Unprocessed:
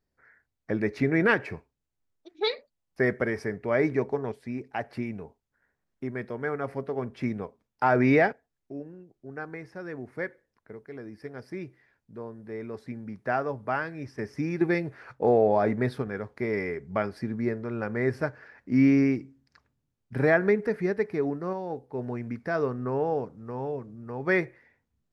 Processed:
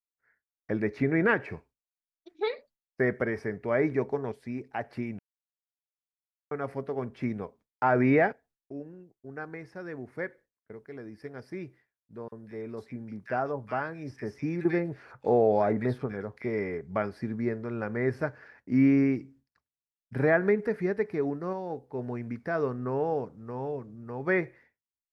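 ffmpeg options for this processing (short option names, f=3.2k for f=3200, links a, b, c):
-filter_complex "[0:a]asettb=1/sr,asplit=3[a][b][c];[a]atrim=end=12.284[d];[b]atrim=start=12.28:end=16.81,asetpts=PTS-STARTPTS,afade=t=in:d=0.004:c=qsin,afade=t=out:st=4.526:d=0.004:c=qsin,acrossover=split=1700[e][f];[e]adelay=40[g];[g][f]amix=inputs=2:normalize=0,atrim=end_sample=199773[h];[c]atrim=start=16.806[i];[d][h]acrossfade=d=0.004:c1=hsin:c2=qsin[j];[j][i]acrossfade=d=0.004:c1=qsin:c2=hsin,asplit=3[k][l][m];[k]atrim=end=5.19,asetpts=PTS-STARTPTS,afade=t=out:st=5.186:d=0.004:c=hsin[n];[l]atrim=start=5.19:end=6.51,asetpts=PTS-STARTPTS,volume=0[o];[m]atrim=start=6.51,asetpts=PTS-STARTPTS,afade=t=in:d=0.004:c=hsin[p];[n][o][p]concat=n=3:v=0:a=1,acrossover=split=2800[q][r];[r]acompressor=threshold=-54dB:ratio=4:attack=1:release=60[s];[q][s]amix=inputs=2:normalize=0,agate=range=-33dB:threshold=-50dB:ratio=3:detection=peak,volume=-1.5dB"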